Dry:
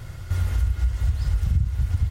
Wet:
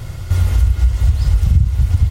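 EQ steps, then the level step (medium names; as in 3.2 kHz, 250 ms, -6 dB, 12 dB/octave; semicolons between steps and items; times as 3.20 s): peaking EQ 1.6 kHz -5.5 dB 0.61 oct; +9.0 dB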